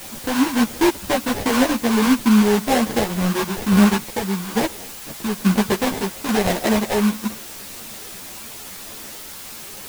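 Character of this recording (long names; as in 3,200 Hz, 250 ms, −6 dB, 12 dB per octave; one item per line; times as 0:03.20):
aliases and images of a low sample rate 1,300 Hz, jitter 20%
sample-and-hold tremolo
a quantiser's noise floor 6 bits, dither triangular
a shimmering, thickened sound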